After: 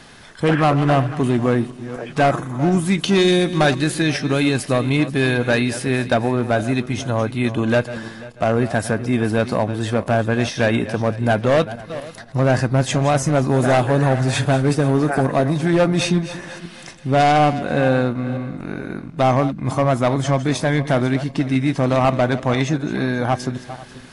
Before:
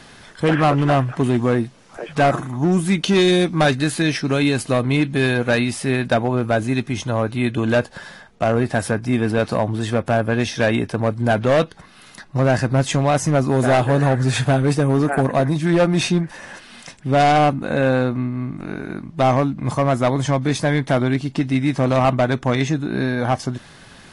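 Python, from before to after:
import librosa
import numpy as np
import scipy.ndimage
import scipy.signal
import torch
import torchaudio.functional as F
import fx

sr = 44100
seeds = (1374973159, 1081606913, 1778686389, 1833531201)

y = fx.reverse_delay_fb(x, sr, ms=245, feedback_pct=48, wet_db=-13.5)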